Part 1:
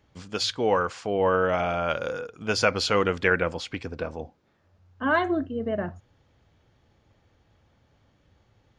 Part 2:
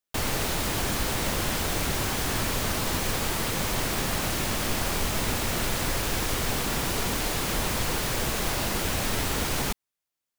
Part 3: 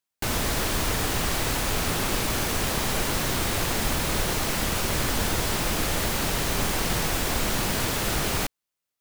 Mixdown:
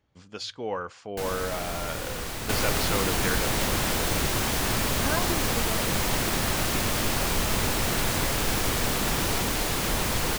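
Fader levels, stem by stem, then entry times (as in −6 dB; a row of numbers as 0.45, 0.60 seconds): −8.5, +1.0, −8.0 decibels; 0.00, 2.35, 0.95 seconds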